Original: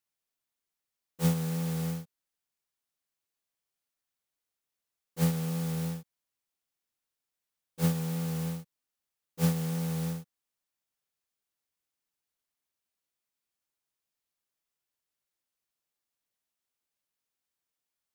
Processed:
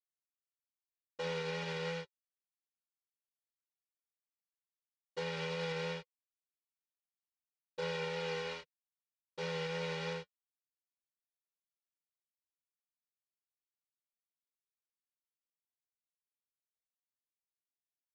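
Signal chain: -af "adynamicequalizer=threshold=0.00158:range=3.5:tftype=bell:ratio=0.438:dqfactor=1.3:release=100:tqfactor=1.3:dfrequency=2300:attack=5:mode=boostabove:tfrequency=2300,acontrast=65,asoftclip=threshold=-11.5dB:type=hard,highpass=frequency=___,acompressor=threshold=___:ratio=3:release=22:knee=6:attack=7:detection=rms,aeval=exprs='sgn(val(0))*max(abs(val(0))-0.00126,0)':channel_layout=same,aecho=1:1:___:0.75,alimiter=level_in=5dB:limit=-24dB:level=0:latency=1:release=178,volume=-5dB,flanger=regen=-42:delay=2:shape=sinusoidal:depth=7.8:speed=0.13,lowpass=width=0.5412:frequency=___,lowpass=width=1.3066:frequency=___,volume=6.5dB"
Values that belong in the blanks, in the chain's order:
350, -37dB, 2.1, 4800, 4800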